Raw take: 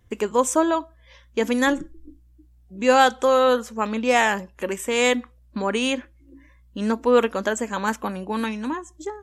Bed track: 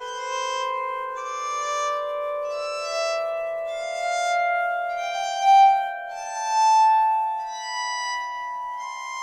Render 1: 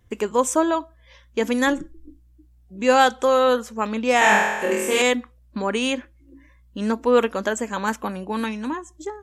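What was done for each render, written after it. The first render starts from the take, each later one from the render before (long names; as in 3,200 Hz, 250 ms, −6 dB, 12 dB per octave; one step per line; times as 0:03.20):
0:04.19–0:05.02: flutter between parallel walls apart 4.1 metres, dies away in 1.1 s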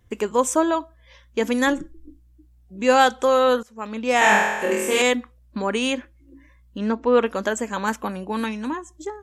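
0:03.63–0:04.23: fade in, from −17 dB
0:06.78–0:07.26: high-frequency loss of the air 140 metres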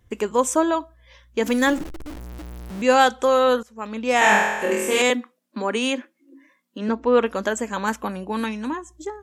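0:01.46–0:02.82: converter with a step at zero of −30.5 dBFS
0:05.10–0:06.89: Butterworth high-pass 200 Hz 48 dB per octave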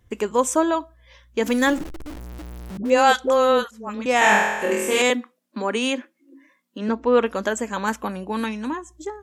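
0:02.77–0:04.06: all-pass dispersion highs, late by 83 ms, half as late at 550 Hz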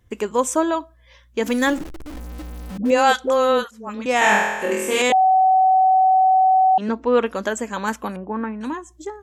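0:02.13–0:02.91: comb filter 3.9 ms, depth 87%
0:05.12–0:06.78: beep over 755 Hz −11.5 dBFS
0:08.16–0:08.61: low-pass filter 1,700 Hz 24 dB per octave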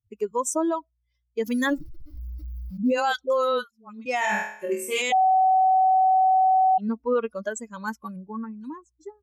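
spectral dynamics exaggerated over time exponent 2
brickwall limiter −15.5 dBFS, peak gain reduction 8 dB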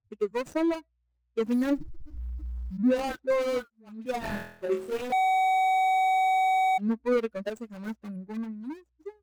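running median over 41 samples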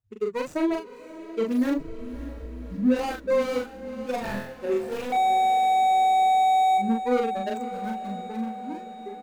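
double-tracking delay 40 ms −3 dB
feedback delay with all-pass diffusion 586 ms, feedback 63%, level −14 dB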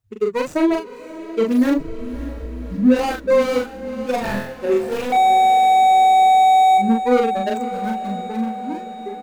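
level +7.5 dB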